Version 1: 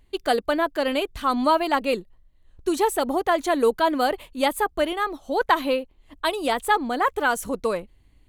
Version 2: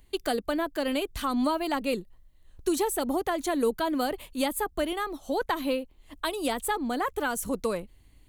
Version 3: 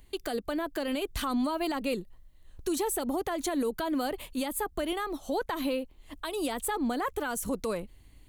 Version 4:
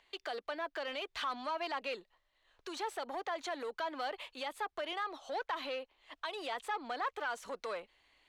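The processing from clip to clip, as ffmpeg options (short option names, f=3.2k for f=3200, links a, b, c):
-filter_complex "[0:a]highshelf=f=5.5k:g=9.5,acrossover=split=320[a][b];[b]acompressor=threshold=-31dB:ratio=2.5[c];[a][c]amix=inputs=2:normalize=0"
-af "alimiter=limit=-24dB:level=0:latency=1:release=99,volume=2dB"
-filter_complex "[0:a]asplit=2[a][b];[b]highpass=f=720:p=1,volume=12dB,asoftclip=type=tanh:threshold=-21.5dB[c];[a][c]amix=inputs=2:normalize=0,lowpass=f=4.5k:p=1,volume=-6dB,acrossover=split=470 5900:gain=0.126 1 0.112[d][e][f];[d][e][f]amix=inputs=3:normalize=0,volume=-5.5dB"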